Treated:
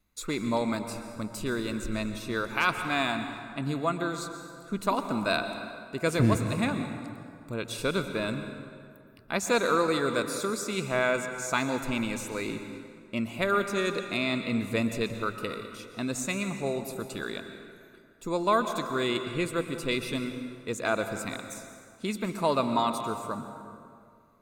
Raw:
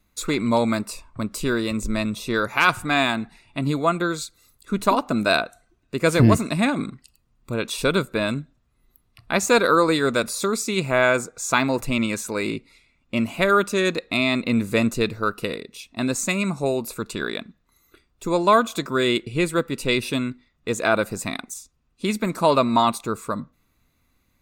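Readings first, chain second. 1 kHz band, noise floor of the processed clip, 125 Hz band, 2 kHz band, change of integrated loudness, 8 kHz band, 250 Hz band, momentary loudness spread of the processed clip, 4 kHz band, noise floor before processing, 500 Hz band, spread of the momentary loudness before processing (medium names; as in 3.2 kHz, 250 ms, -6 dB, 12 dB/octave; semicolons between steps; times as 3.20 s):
-7.0 dB, -54 dBFS, -7.0 dB, -7.5 dB, -7.5 dB, -7.5 dB, -7.5 dB, 13 LU, -7.5 dB, -67 dBFS, -7.5 dB, 13 LU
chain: plate-style reverb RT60 2.3 s, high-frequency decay 0.6×, pre-delay 105 ms, DRR 7.5 dB; trim -8 dB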